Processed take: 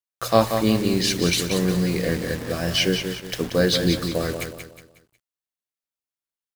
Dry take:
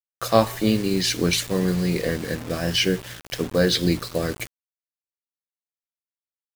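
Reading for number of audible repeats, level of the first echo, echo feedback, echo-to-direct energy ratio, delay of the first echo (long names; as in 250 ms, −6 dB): 4, −7.5 dB, 37%, −7.0 dB, 182 ms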